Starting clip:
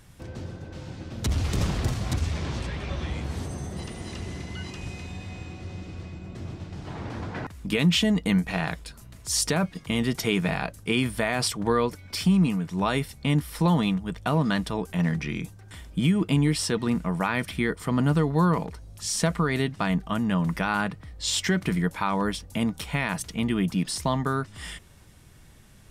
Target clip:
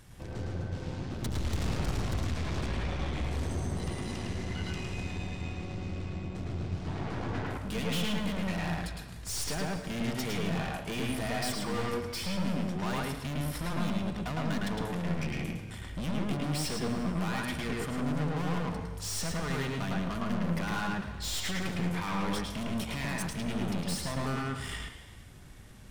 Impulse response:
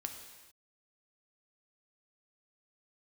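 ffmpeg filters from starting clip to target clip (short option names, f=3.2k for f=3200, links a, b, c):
-filter_complex "[0:a]aeval=exprs='(tanh(50.1*val(0)+0.55)-tanh(0.55))/50.1':c=same,asplit=2[a][b];[1:a]atrim=start_sample=2205,highshelf=f=5.8k:g=-11,adelay=108[c];[b][c]afir=irnorm=-1:irlink=0,volume=3.5dB[d];[a][d]amix=inputs=2:normalize=0"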